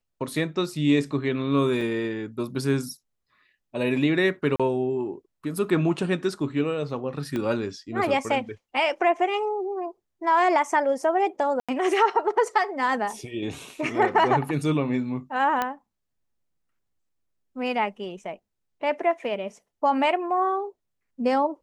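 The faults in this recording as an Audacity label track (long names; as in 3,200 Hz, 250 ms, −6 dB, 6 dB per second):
1.810000	1.810000	drop-out 3 ms
4.560000	4.600000	drop-out 36 ms
7.360000	7.360000	click −17 dBFS
11.600000	11.690000	drop-out 86 ms
15.620000	15.620000	click −11 dBFS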